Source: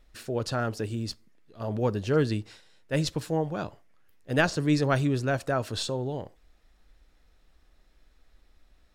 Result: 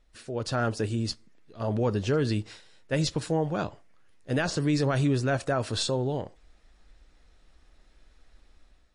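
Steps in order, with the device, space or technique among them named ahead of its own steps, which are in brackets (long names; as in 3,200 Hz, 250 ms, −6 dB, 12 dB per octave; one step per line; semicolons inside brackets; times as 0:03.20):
low-bitrate web radio (automatic gain control gain up to 8 dB; brickwall limiter −12.5 dBFS, peak gain reduction 8.5 dB; level −4.5 dB; MP3 40 kbit/s 24,000 Hz)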